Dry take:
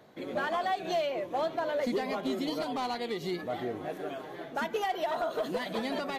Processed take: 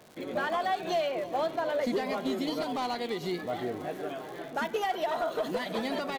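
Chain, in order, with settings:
repeating echo 328 ms, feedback 48%, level −18.5 dB
surface crackle 190 per second −42 dBFS
level +1 dB

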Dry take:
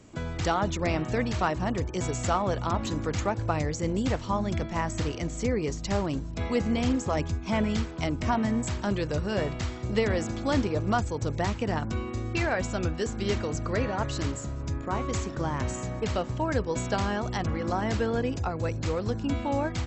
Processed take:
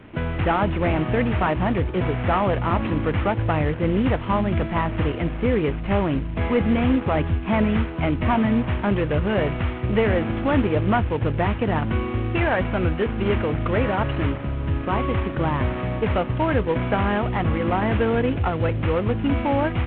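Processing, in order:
variable-slope delta modulation 16 kbit/s
in parallel at −2.5 dB: brickwall limiter −22 dBFS, peak gain reduction 7.5 dB
on the sum: level +3.5 dB

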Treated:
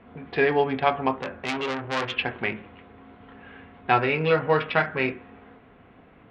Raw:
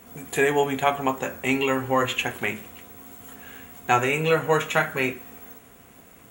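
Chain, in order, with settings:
adaptive Wiener filter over 9 samples
downsampling to 11,025 Hz
0:01.17–0:02.14: saturating transformer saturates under 2,800 Hz

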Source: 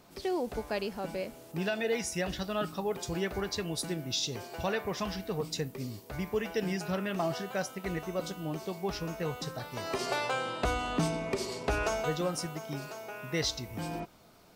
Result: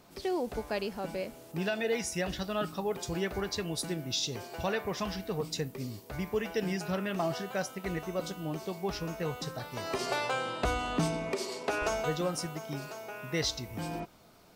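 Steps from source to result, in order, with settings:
0:11.33–0:11.82: high-pass filter 260 Hz 12 dB per octave

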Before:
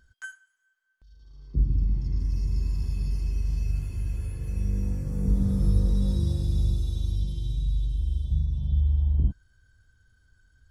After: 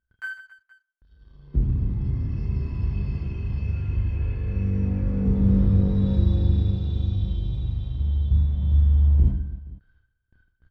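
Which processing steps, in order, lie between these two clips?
noise gate with hold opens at −51 dBFS
low-pass filter 3,200 Hz 24 dB per octave
leveller curve on the samples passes 1
reverse bouncing-ball delay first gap 30 ms, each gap 1.6×, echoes 5
level +1 dB

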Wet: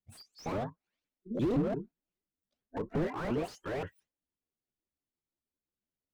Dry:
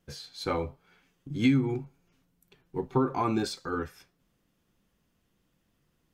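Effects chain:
pitch shifter swept by a sawtooth +12 semitones, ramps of 174 ms
noise reduction from a noise print of the clip's start 24 dB
slew-rate limiting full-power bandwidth 15 Hz

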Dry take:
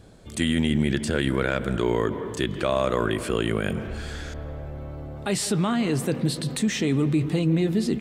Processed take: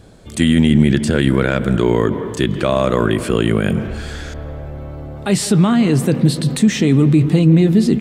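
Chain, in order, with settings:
dynamic equaliser 170 Hz, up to +6 dB, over −35 dBFS, Q 0.74
level +6 dB

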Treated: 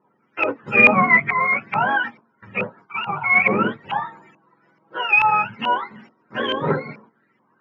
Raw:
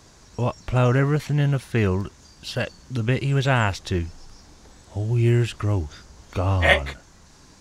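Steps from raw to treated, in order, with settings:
frequency axis turned over on the octave scale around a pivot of 550 Hz
in parallel at −2.5 dB: downward compressor, threshold −31 dBFS, peak gain reduction 22.5 dB
on the sum: noise gate −43 dBFS, range −14 dB
soft clipping −11.5 dBFS, distortion −12 dB
dynamic equaliser 2,100 Hz, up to +6 dB, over −35 dBFS, Q 1.1
0:02.81–0:03.24: phaser with its sweep stopped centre 380 Hz, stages 8
harmonic generator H 6 −27 dB, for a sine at −6 dBFS
0:00.63–0:01.37: low-shelf EQ 230 Hz +10 dB
0:04.01–0:05.01: comb filter 6.1 ms, depth 98%
convolution reverb RT60 0.10 s, pre-delay 3 ms, DRR 8.5 dB
auto-filter low-pass saw up 2.3 Hz 900–2,400 Hz
hum removal 227.5 Hz, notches 5
level −5.5 dB

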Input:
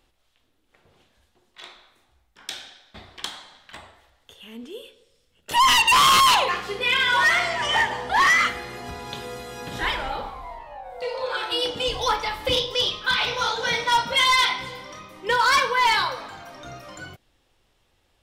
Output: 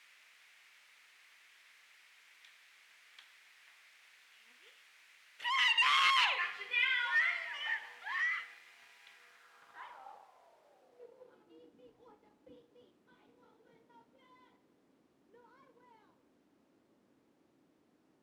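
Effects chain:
source passing by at 0:06.20, 6 m/s, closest 3.6 metres
in parallel at −4 dB: bit reduction 7 bits
on the sum: background noise white −43 dBFS
band-pass filter sweep 2,100 Hz → 280 Hz, 0:09.06–0:11.47
level −8 dB

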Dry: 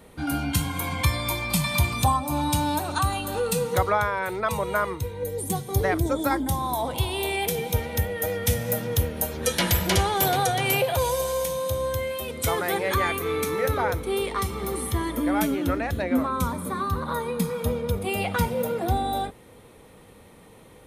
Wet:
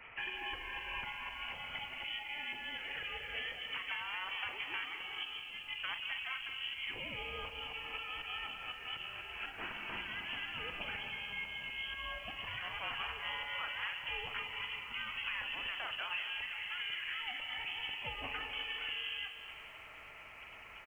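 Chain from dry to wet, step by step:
gate on every frequency bin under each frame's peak −10 dB weak
high-pass filter 150 Hz 6 dB per octave
downward compressor 5 to 1, threshold −44 dBFS, peak gain reduction 20 dB
brickwall limiter −33 dBFS, peak gain reduction 9 dB
high-frequency loss of the air 130 metres
double-tracking delay 42 ms −11 dB
repeating echo 253 ms, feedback 40%, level −13.5 dB
voice inversion scrambler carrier 3,200 Hz
feedback echo at a low word length 186 ms, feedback 55%, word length 11 bits, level −12 dB
level +6 dB

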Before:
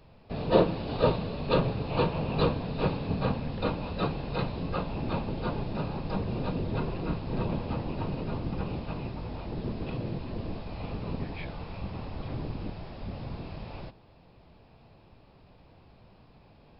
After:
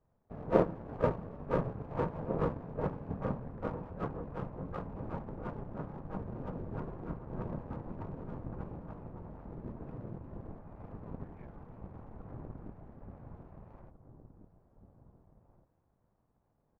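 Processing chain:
inverse Chebyshev low-pass filter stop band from 3,200 Hz, stop band 40 dB
power curve on the samples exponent 1.4
slap from a distant wall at 300 metres, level −10 dB
level −1.5 dB

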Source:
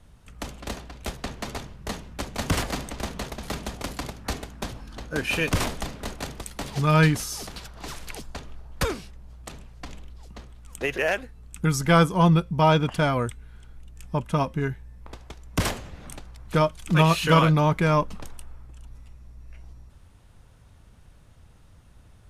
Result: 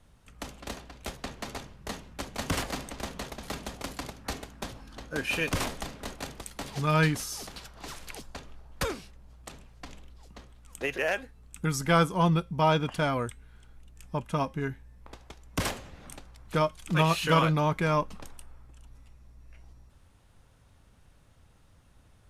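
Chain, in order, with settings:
low-shelf EQ 200 Hz −4 dB
tuned comb filter 270 Hz, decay 0.23 s, mix 40%

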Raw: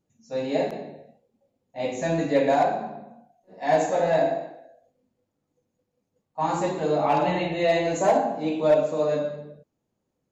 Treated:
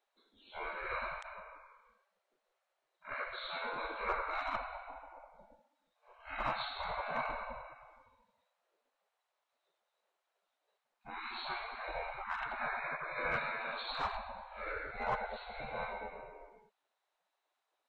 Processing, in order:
wrong playback speed 78 rpm record played at 45 rpm
spectral tilt −3.5 dB per octave
in parallel at +0.5 dB: downward compressor 5 to 1, threshold −29 dBFS, peak gain reduction 18.5 dB
on the sum: gate on every frequency bin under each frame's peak −30 dB weak
level +2 dB

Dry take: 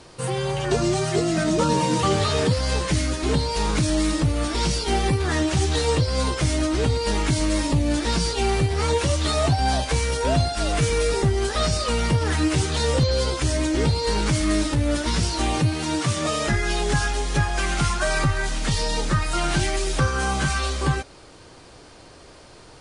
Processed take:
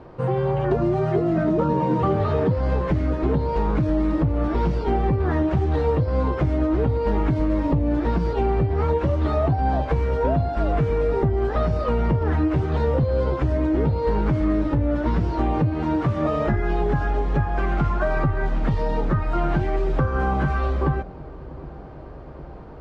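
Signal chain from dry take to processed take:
low-pass filter 1,100 Hz 12 dB per octave
downward compressor, threshold −22 dBFS, peak gain reduction 7 dB
delay with a low-pass on its return 760 ms, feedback 74%, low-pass 750 Hz, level −19 dB
level +5 dB

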